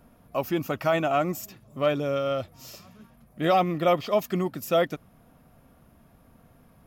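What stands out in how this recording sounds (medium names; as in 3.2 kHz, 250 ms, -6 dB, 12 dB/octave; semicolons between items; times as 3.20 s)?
noise floor -58 dBFS; spectral tilt -4.5 dB/octave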